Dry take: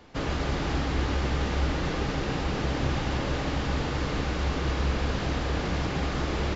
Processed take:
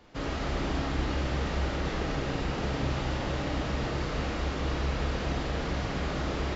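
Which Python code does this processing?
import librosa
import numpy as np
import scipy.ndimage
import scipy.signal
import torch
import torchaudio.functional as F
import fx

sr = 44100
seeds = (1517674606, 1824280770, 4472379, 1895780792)

y = fx.rev_freeverb(x, sr, rt60_s=0.86, hf_ratio=0.45, predelay_ms=0, drr_db=0.5)
y = F.gain(torch.from_numpy(y), -5.0).numpy()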